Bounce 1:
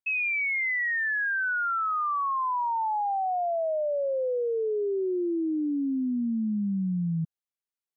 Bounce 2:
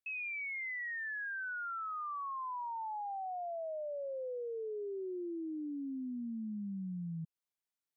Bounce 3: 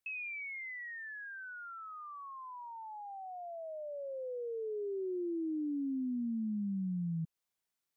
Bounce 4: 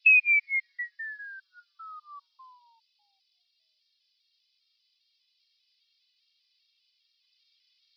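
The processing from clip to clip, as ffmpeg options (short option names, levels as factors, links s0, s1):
-af "alimiter=level_in=3.76:limit=0.0631:level=0:latency=1:release=146,volume=0.266,volume=0.841"
-filter_complex "[0:a]acrossover=split=440|3000[s0][s1][s2];[s1]acompressor=threshold=0.00224:ratio=6[s3];[s0][s3][s2]amix=inputs=3:normalize=0,volume=1.68"
-af "aexciter=amount=14.7:drive=6.2:freq=2400,asuperpass=centerf=2400:order=20:qfactor=0.6,afftfilt=real='re*gt(sin(2*PI*2.5*pts/sr)*(1-2*mod(floor(b*sr/1024/240),2)),0)':imag='im*gt(sin(2*PI*2.5*pts/sr)*(1-2*mod(floor(b*sr/1024/240),2)),0)':win_size=1024:overlap=0.75,volume=1.78"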